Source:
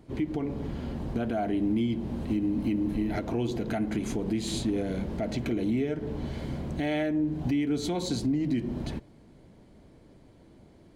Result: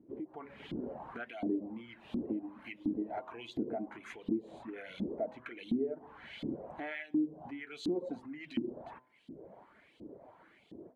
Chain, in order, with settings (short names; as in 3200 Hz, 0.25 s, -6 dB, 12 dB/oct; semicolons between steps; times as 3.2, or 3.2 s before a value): wow and flutter 20 cents; LFO band-pass saw up 1.4 Hz 260–3600 Hz; dynamic EQ 270 Hz, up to +7 dB, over -46 dBFS, Q 0.85; AGC gain up to 16 dB; reverb removal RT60 0.67 s; compressor 2:1, threshold -44 dBFS, peak gain reduction 20 dB; bell 5100 Hz -10 dB 1 oct; de-hum 127.4 Hz, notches 8; gain -2 dB